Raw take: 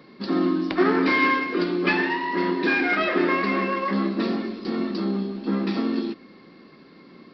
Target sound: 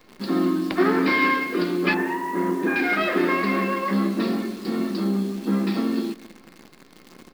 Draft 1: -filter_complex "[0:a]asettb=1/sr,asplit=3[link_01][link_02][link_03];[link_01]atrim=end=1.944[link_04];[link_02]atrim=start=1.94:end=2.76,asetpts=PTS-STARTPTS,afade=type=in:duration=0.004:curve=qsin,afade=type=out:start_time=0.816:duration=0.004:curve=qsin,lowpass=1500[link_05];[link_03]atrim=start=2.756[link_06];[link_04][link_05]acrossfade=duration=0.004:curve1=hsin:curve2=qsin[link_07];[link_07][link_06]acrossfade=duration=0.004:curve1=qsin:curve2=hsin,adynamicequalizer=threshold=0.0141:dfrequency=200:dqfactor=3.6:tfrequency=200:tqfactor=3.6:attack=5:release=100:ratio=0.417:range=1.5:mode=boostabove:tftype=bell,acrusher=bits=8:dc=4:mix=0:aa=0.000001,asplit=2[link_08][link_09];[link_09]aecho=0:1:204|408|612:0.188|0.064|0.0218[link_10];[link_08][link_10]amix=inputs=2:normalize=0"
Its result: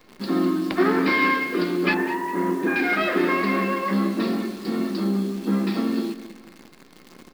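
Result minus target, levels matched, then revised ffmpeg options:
echo-to-direct +8 dB
-filter_complex "[0:a]asettb=1/sr,asplit=3[link_01][link_02][link_03];[link_01]atrim=end=1.944[link_04];[link_02]atrim=start=1.94:end=2.76,asetpts=PTS-STARTPTS,afade=type=in:duration=0.004:curve=qsin,afade=type=out:start_time=0.816:duration=0.004:curve=qsin,lowpass=1500[link_05];[link_03]atrim=start=2.756[link_06];[link_04][link_05]acrossfade=duration=0.004:curve1=hsin:curve2=qsin[link_07];[link_07][link_06]acrossfade=duration=0.004:curve1=qsin:curve2=hsin,adynamicequalizer=threshold=0.0141:dfrequency=200:dqfactor=3.6:tfrequency=200:tqfactor=3.6:attack=5:release=100:ratio=0.417:range=1.5:mode=boostabove:tftype=bell,acrusher=bits=8:dc=4:mix=0:aa=0.000001,asplit=2[link_08][link_09];[link_09]aecho=0:1:204|408:0.075|0.0255[link_10];[link_08][link_10]amix=inputs=2:normalize=0"

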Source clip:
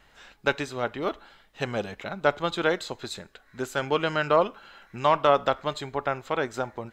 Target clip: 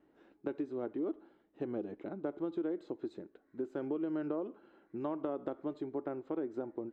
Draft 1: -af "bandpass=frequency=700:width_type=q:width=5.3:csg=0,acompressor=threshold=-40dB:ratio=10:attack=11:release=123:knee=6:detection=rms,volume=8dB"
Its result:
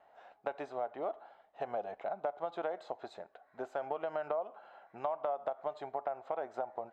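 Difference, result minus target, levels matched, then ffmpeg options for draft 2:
250 Hz band −15.5 dB
-af "bandpass=frequency=320:width_type=q:width=5.3:csg=0,acompressor=threshold=-40dB:ratio=10:attack=11:release=123:knee=6:detection=rms,volume=8dB"

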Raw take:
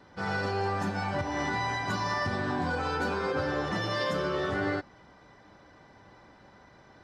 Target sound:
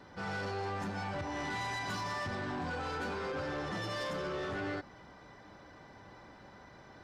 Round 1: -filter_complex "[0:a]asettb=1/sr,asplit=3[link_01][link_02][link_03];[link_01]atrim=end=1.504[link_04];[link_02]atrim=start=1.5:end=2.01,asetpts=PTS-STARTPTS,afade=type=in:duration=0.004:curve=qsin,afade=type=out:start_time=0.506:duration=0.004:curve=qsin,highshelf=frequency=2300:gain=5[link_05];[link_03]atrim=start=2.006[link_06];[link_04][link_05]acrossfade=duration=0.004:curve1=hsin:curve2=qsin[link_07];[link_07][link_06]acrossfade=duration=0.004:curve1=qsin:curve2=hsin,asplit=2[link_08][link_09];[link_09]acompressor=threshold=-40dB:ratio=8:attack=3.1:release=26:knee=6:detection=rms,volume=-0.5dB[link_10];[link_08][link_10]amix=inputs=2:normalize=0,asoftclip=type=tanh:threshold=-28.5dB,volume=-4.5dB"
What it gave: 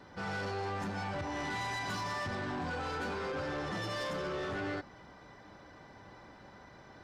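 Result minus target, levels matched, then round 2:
downward compressor: peak gain reduction −7 dB
-filter_complex "[0:a]asettb=1/sr,asplit=3[link_01][link_02][link_03];[link_01]atrim=end=1.504[link_04];[link_02]atrim=start=1.5:end=2.01,asetpts=PTS-STARTPTS,afade=type=in:duration=0.004:curve=qsin,afade=type=out:start_time=0.506:duration=0.004:curve=qsin,highshelf=frequency=2300:gain=5[link_05];[link_03]atrim=start=2.006[link_06];[link_04][link_05]acrossfade=duration=0.004:curve1=hsin:curve2=qsin[link_07];[link_07][link_06]acrossfade=duration=0.004:curve1=qsin:curve2=hsin,asplit=2[link_08][link_09];[link_09]acompressor=threshold=-48dB:ratio=8:attack=3.1:release=26:knee=6:detection=rms,volume=-0.5dB[link_10];[link_08][link_10]amix=inputs=2:normalize=0,asoftclip=type=tanh:threshold=-28.5dB,volume=-4.5dB"

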